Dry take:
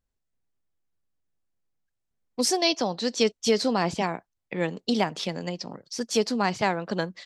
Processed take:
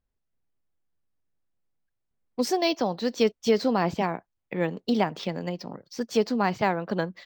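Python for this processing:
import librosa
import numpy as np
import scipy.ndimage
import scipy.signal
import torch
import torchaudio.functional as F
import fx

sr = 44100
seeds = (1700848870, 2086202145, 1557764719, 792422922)

y = fx.high_shelf(x, sr, hz=3900.0, db=-11.5)
y = np.interp(np.arange(len(y)), np.arange(len(y))[::2], y[::2])
y = y * 10.0 ** (1.0 / 20.0)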